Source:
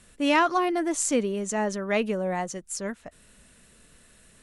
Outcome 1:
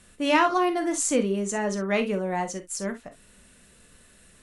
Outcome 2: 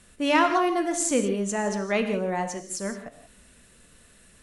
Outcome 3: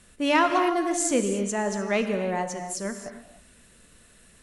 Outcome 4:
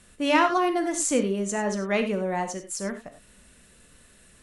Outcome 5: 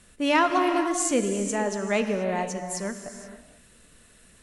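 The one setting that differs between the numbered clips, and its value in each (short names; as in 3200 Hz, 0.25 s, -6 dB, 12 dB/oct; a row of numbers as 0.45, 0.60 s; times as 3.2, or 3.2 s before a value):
non-linear reverb, gate: 80, 200, 330, 120, 510 ms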